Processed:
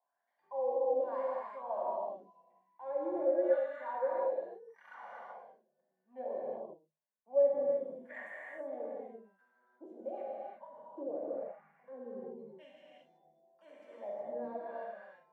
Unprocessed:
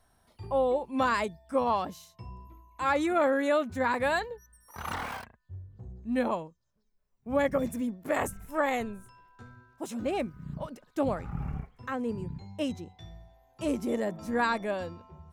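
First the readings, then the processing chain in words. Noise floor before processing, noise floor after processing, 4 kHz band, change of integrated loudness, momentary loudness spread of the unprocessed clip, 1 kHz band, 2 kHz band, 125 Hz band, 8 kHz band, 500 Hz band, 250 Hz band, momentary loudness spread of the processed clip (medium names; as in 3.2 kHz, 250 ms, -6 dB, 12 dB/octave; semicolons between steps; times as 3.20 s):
-70 dBFS, -83 dBFS, under -25 dB, -6.0 dB, 20 LU, -10.5 dB, -17.0 dB, under -25 dB, under -30 dB, -3.0 dB, -15.5 dB, 20 LU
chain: rippled Chebyshev high-pass 150 Hz, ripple 9 dB; wah-wah 0.89 Hz 350–1900 Hz, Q 4.6; comb of notches 1.3 kHz; gated-style reverb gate 400 ms flat, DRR -5.5 dB; trim -3.5 dB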